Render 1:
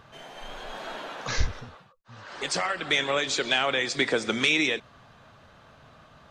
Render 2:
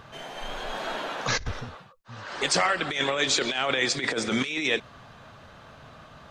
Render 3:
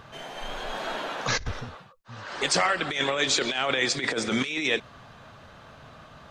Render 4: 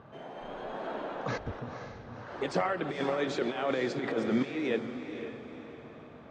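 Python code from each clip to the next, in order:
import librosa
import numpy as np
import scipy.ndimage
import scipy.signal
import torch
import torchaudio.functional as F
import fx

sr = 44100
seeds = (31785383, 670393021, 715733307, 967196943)

y1 = fx.over_compress(x, sr, threshold_db=-27.0, ratio=-0.5)
y1 = F.gain(torch.from_numpy(y1), 2.5).numpy()
y2 = y1
y3 = fx.bandpass_q(y2, sr, hz=300.0, q=0.6)
y3 = fx.echo_diffused(y3, sr, ms=504, feedback_pct=43, wet_db=-8.5)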